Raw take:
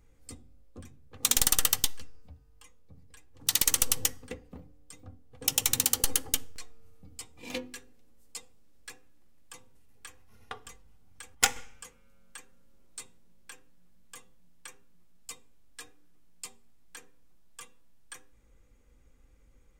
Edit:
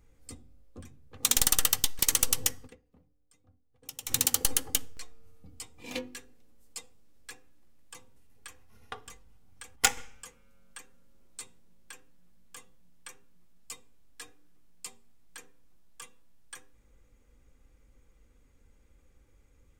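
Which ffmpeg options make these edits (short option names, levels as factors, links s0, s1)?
-filter_complex "[0:a]asplit=4[s0][s1][s2][s3];[s0]atrim=end=1.992[s4];[s1]atrim=start=3.578:end=4.53,asetpts=PTS-STARTPTS,afade=t=out:st=0.672:d=0.28:c=exp:silence=0.158489[s5];[s2]atrim=start=4.53:end=5.43,asetpts=PTS-STARTPTS,volume=0.158[s6];[s3]atrim=start=5.43,asetpts=PTS-STARTPTS,afade=t=in:d=0.28:c=exp:silence=0.158489[s7];[s5][s6][s7]concat=n=3:v=0:a=1[s8];[s4][s8]acrossfade=d=0.004:c1=hsin:c2=hsin"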